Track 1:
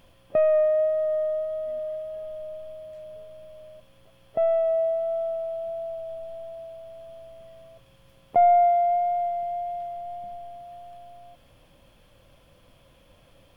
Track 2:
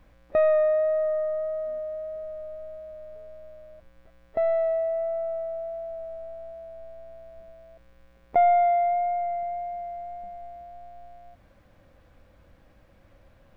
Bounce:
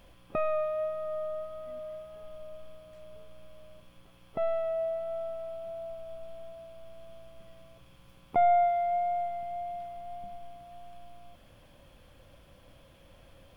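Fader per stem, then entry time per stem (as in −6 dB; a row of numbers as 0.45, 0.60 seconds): −1.5, −4.5 decibels; 0.00, 0.00 seconds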